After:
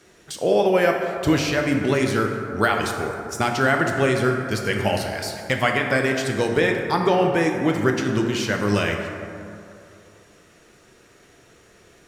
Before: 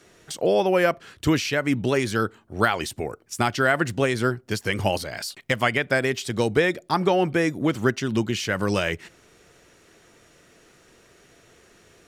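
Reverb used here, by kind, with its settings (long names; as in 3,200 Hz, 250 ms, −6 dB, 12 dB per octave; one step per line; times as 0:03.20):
dense smooth reverb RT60 2.6 s, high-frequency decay 0.4×, DRR 2 dB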